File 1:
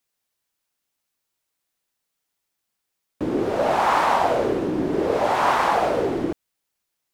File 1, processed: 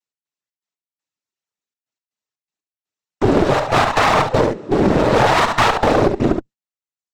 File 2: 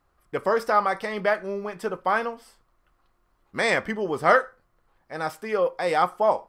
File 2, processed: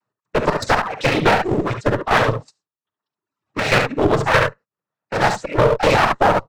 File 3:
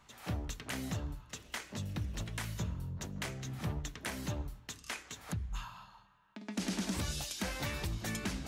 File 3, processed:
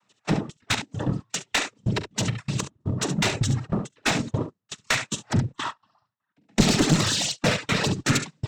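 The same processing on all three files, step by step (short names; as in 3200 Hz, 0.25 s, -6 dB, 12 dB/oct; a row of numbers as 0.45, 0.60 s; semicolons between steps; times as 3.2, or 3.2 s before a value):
octaver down 2 oct, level +2 dB; noise vocoder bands 12; step gate "x.xx.x..xxxxxx." 121 bpm -12 dB; reverb removal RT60 1.3 s; early reflections 44 ms -16.5 dB, 70 ms -9.5 dB; gate -48 dBFS, range -22 dB; limiter -16 dBFS; AGC gain up to 3 dB; dynamic EQ 3900 Hz, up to +4 dB, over -48 dBFS, Q 2.7; one-sided clip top -34.5 dBFS; normalise peaks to -3 dBFS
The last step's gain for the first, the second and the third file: +12.0, +12.5, +16.0 dB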